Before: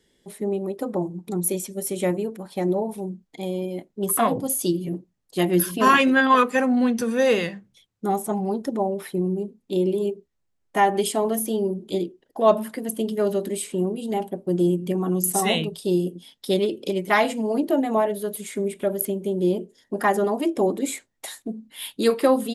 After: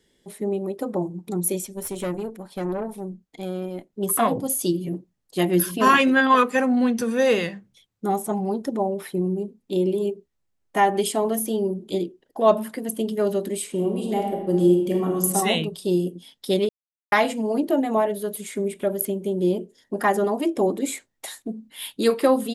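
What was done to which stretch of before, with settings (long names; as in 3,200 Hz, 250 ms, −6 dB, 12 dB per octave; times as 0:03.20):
0:01.65–0:03.93: tube saturation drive 22 dB, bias 0.55
0:13.70–0:15.20: thrown reverb, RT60 1 s, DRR 1.5 dB
0:16.69–0:17.12: silence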